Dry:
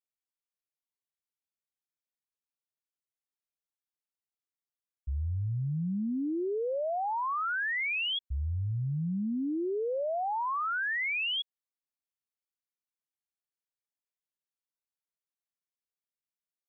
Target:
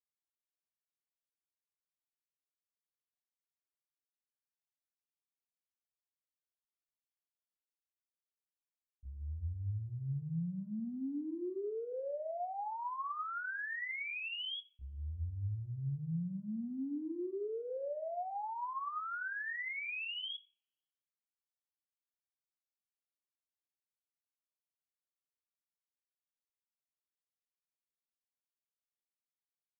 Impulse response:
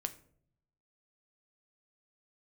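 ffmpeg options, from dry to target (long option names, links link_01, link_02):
-filter_complex "[0:a]atempo=0.56,agate=range=-33dB:threshold=-17dB:ratio=3:detection=peak[link_01];[1:a]atrim=start_sample=2205[link_02];[link_01][link_02]afir=irnorm=-1:irlink=0,volume=16.5dB"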